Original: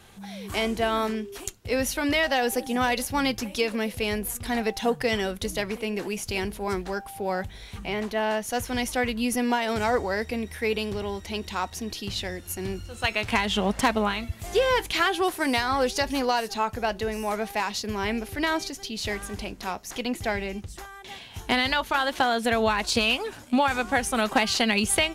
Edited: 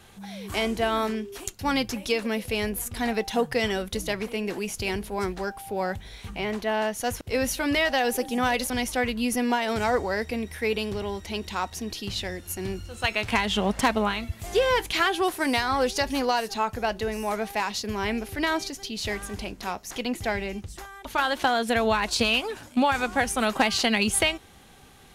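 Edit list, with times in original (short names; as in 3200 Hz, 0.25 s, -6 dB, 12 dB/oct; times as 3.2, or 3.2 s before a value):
1.59–3.08 move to 8.7
21.05–21.81 cut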